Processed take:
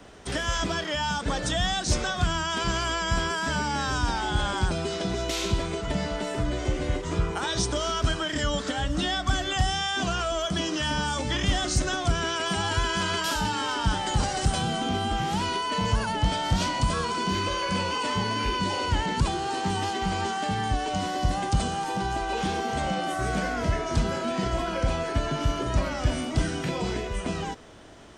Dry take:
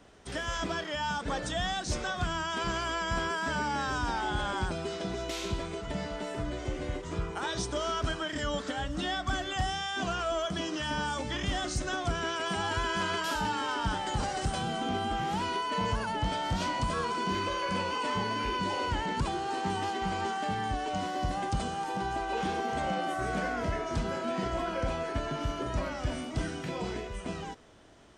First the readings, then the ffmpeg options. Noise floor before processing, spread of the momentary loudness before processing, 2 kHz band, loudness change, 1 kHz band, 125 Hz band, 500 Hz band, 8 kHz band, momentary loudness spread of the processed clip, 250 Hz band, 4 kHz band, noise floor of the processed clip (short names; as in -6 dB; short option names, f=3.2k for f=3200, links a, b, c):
-39 dBFS, 5 LU, +4.0 dB, +5.0 dB, +3.5 dB, +8.0 dB, +4.0 dB, +8.5 dB, 3 LU, +5.5 dB, +7.0 dB, -33 dBFS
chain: -filter_complex "[0:a]acrossover=split=180|3000[a][b][c];[b]acompressor=threshold=-38dB:ratio=2.5[d];[a][d][c]amix=inputs=3:normalize=0,volume=8.5dB"